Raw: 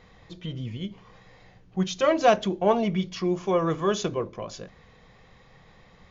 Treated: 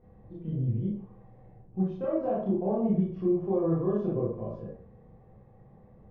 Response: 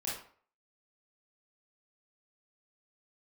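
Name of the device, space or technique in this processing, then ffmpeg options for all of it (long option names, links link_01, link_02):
television next door: -filter_complex "[0:a]acompressor=threshold=-23dB:ratio=6,lowpass=520[link_01];[1:a]atrim=start_sample=2205[link_02];[link_01][link_02]afir=irnorm=-1:irlink=0"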